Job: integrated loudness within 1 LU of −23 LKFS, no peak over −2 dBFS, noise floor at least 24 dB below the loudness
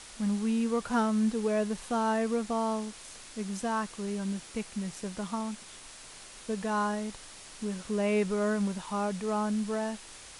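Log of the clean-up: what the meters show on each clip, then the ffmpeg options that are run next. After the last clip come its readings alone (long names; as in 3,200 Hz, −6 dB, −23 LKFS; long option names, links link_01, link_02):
background noise floor −49 dBFS; target noise floor −56 dBFS; integrated loudness −31.5 LKFS; sample peak −17.0 dBFS; target loudness −23.0 LKFS
→ -af "afftdn=noise_reduction=7:noise_floor=-49"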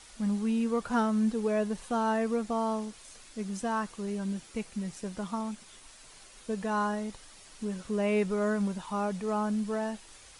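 background noise floor −53 dBFS; target noise floor −56 dBFS
→ -af "afftdn=noise_reduction=6:noise_floor=-53"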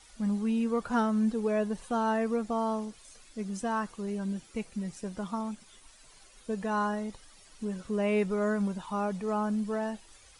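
background noise floor −57 dBFS; integrated loudness −31.5 LKFS; sample peak −17.5 dBFS; target loudness −23.0 LKFS
→ -af "volume=8.5dB"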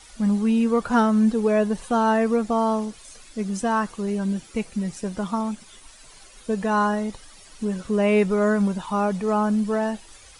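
integrated loudness −23.0 LKFS; sample peak −9.0 dBFS; background noise floor −48 dBFS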